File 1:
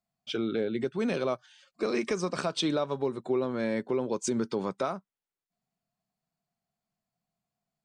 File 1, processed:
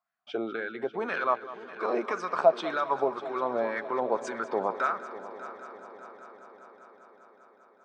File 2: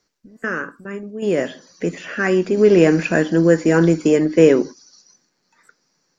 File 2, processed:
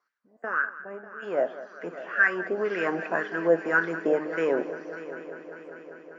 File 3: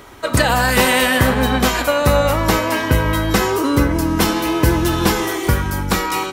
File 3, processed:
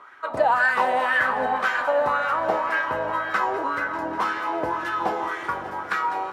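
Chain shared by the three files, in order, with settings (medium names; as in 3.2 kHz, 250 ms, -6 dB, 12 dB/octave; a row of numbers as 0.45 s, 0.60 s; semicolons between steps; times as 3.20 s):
high-pass 62 Hz; wah-wah 1.9 Hz 670–1600 Hz, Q 4; on a send: multi-head delay 198 ms, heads first and third, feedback 70%, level -16 dB; on the sum: peak normalisation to -9 dBFS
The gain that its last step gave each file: +14.0 dB, +4.0 dB, +3.0 dB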